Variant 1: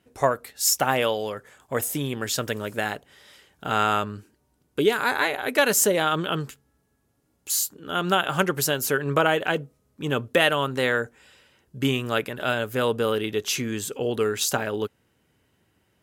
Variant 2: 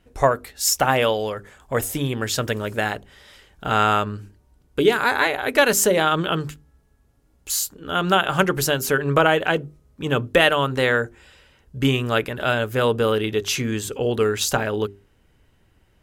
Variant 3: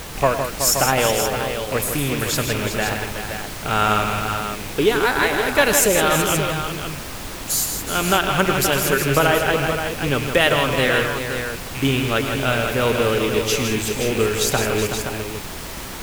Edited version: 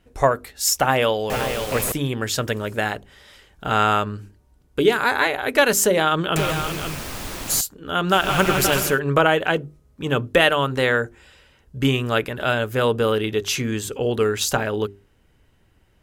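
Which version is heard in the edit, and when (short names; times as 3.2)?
2
1.3–1.92 from 3
6.36–7.61 from 3
8.21–8.88 from 3, crossfade 0.24 s
not used: 1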